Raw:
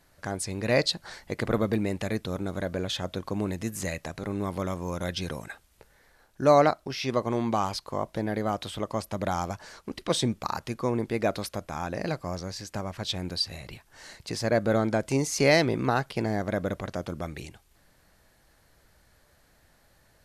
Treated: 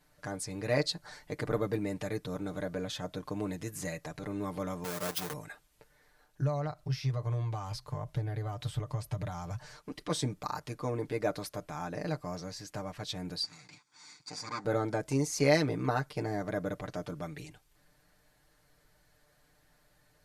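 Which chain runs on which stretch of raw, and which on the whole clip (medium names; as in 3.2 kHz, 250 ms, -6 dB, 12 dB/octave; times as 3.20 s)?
4.84–5.33 s: square wave that keeps the level + high-pass 400 Hz 6 dB/octave + treble shelf 9.4 kHz +8 dB
6.41–9.76 s: compression 3:1, threshold -32 dBFS + resonant low shelf 170 Hz +9 dB, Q 3
13.43–14.65 s: comb filter that takes the minimum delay 0.87 ms + cabinet simulation 250–8000 Hz, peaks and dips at 390 Hz -9 dB, 650 Hz -5 dB, 1.2 kHz -3 dB, 3 kHz -9 dB, 4.6 kHz +6 dB, 7 kHz +4 dB
whole clip: comb 6.7 ms, depth 75%; dynamic bell 3 kHz, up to -5 dB, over -45 dBFS, Q 1.6; trim -7 dB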